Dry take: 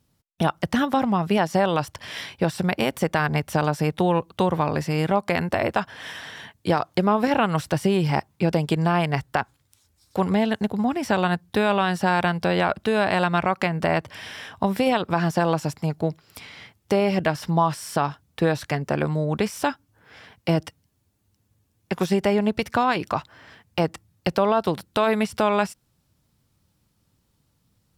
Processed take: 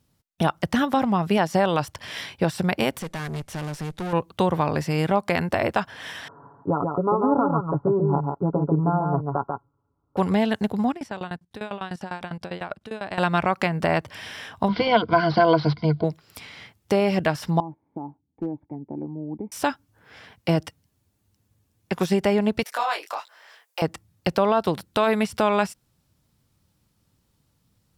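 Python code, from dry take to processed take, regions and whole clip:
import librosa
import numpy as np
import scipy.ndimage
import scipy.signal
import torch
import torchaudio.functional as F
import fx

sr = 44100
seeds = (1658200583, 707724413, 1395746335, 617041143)

y = fx.chain(x, sr, fx.cvsd(bps=64000),
    fx.tube_stage(drive_db=27.0, bias=0.65), at=(2.99, 4.13))
y = fx.chain(y, sr, fx.cheby_ripple(hz=1400.0, ripple_db=6),
    fx.comb(ms=7.1, depth=0.66),
    fx.echo_single(ms=142, db=-4.0), at=(6.28, 10.17))
y = fx.chain(y, sr, fx.lowpass(hz=11000.0, slope=12),
    fx.level_steps(step_db=14),
    fx.tremolo_shape(shape='saw_down', hz=10.0, depth_pct=95), at=(10.91, 13.18))
y = fx.chain(y, sr, fx.ripple_eq(per_octave=1.8, db=17),
    fx.resample_bad(factor=4, down='none', up='filtered'), at=(14.68, 16.04))
y = fx.chain(y, sr, fx.formant_cascade(vowel='u'),
    fx.overload_stage(gain_db=21.0), at=(17.6, 19.52))
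y = fx.chain(y, sr, fx.highpass(hz=510.0, slope=24),
    fx.high_shelf(hz=6100.0, db=11.0),
    fx.detune_double(cents=42), at=(22.63, 23.82))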